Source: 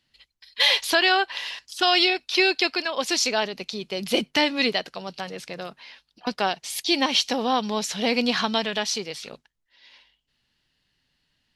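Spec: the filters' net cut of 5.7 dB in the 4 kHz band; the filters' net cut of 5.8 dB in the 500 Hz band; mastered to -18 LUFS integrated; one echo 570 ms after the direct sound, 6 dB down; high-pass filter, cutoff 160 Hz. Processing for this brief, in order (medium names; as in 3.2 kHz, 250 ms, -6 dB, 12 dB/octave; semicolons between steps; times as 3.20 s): high-pass 160 Hz; peaking EQ 500 Hz -8 dB; peaking EQ 4 kHz -7.5 dB; delay 570 ms -6 dB; trim +8.5 dB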